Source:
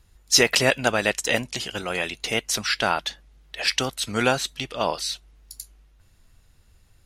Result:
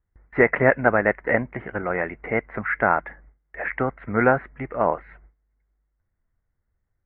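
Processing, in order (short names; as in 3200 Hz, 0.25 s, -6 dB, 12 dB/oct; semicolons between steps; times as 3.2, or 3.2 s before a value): Chebyshev low-pass 2100 Hz, order 6; gate with hold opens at -46 dBFS; gain +4 dB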